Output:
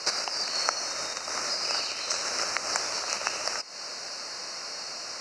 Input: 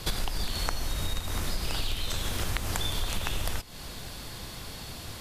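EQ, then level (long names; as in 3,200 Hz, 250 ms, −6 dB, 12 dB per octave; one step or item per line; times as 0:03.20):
Butterworth band-reject 3,400 Hz, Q 2.2
loudspeaker in its box 470–6,500 Hz, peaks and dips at 590 Hz +6 dB, 1,300 Hz +6 dB, 5,500 Hz +9 dB
high-shelf EQ 3,300 Hz +8 dB
+2.0 dB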